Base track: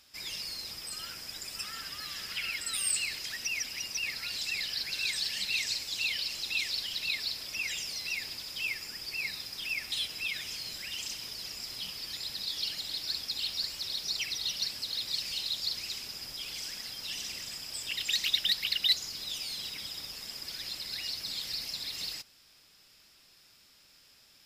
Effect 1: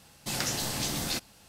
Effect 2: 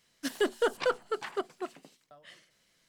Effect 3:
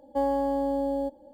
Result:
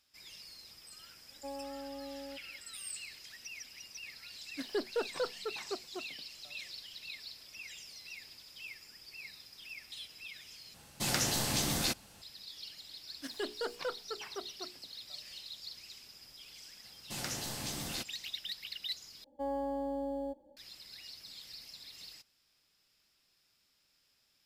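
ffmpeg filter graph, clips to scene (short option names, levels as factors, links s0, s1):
-filter_complex "[3:a]asplit=2[s0][s1];[2:a]asplit=2[s2][s3];[1:a]asplit=2[s4][s5];[0:a]volume=0.224[s6];[s2]tiltshelf=f=1400:g=4.5[s7];[s3]bandreject=f=60:t=h:w=6,bandreject=f=120:t=h:w=6,bandreject=f=180:t=h:w=6,bandreject=f=240:t=h:w=6,bandreject=f=300:t=h:w=6,bandreject=f=360:t=h:w=6,bandreject=f=420:t=h:w=6,bandreject=f=480:t=h:w=6[s8];[s1]dynaudnorm=f=140:g=3:m=1.5[s9];[s6]asplit=3[s10][s11][s12];[s10]atrim=end=10.744[s13];[s4]atrim=end=1.48,asetpts=PTS-STARTPTS,volume=0.944[s14];[s11]atrim=start=12.216:end=19.244[s15];[s9]atrim=end=1.33,asetpts=PTS-STARTPTS,volume=0.224[s16];[s12]atrim=start=20.566[s17];[s0]atrim=end=1.33,asetpts=PTS-STARTPTS,volume=0.133,afade=t=in:d=0.004:c=hsin,afade=t=out:st=1.326:d=0.004:c=hsin,adelay=1280[s18];[s7]atrim=end=2.88,asetpts=PTS-STARTPTS,volume=0.316,afade=t=in:d=0.004:c=hsin,afade=t=out:st=2.876:d=0.004:c=hsin,adelay=4340[s19];[s8]atrim=end=2.88,asetpts=PTS-STARTPTS,volume=0.335,afade=t=in:d=0.004:c=hsin,afade=t=out:st=2.876:d=0.004:c=hsin,adelay=12990[s20];[s5]atrim=end=1.48,asetpts=PTS-STARTPTS,volume=0.398,afade=t=in:d=0.004:c=hsin,afade=t=out:st=1.476:d=0.004:c=hsin,adelay=742644S[s21];[s13][s14]acrossfade=d=0.004:c1=hsin:c2=hsin[s22];[s22][s15]acrossfade=d=0.004:c1=hsin:c2=hsin[s23];[s23][s16]acrossfade=d=0.004:c1=hsin:c2=hsin[s24];[s24][s17]acrossfade=d=0.004:c1=hsin:c2=hsin[s25];[s25][s18][s19][s20][s21]amix=inputs=5:normalize=0"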